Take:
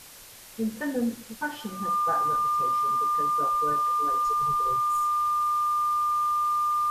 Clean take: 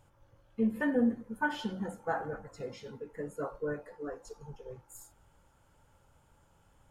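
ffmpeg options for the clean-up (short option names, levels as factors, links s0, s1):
-af "bandreject=f=1200:w=30,afwtdn=0.005,asetnsamples=n=441:p=0,asendcmd='4.14 volume volume -5.5dB',volume=1"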